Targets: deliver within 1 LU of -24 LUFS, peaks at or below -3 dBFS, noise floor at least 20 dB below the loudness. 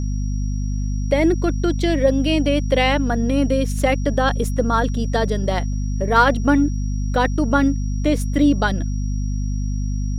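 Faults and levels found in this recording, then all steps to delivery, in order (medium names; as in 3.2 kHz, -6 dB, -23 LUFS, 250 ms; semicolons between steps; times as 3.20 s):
hum 50 Hz; highest harmonic 250 Hz; hum level -20 dBFS; steady tone 5.7 kHz; tone level -43 dBFS; loudness -20.0 LUFS; peak level -1.5 dBFS; loudness target -24.0 LUFS
-> hum notches 50/100/150/200/250 Hz; band-stop 5.7 kHz, Q 30; trim -4 dB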